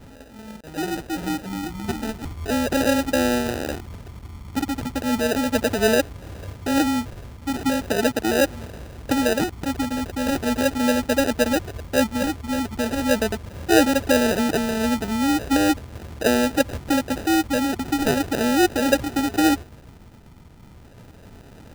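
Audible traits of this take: phasing stages 8, 0.38 Hz, lowest notch 550–1600 Hz; aliases and images of a low sample rate 1100 Hz, jitter 0%

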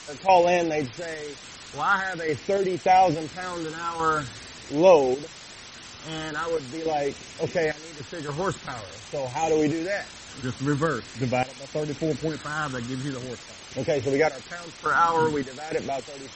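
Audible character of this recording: phasing stages 8, 0.45 Hz, lowest notch 650–1300 Hz; random-step tremolo, depth 90%; a quantiser's noise floor 8-bit, dither triangular; MP3

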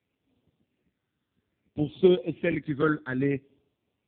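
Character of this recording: phasing stages 8, 0.6 Hz, lowest notch 710–1700 Hz; AMR-NB

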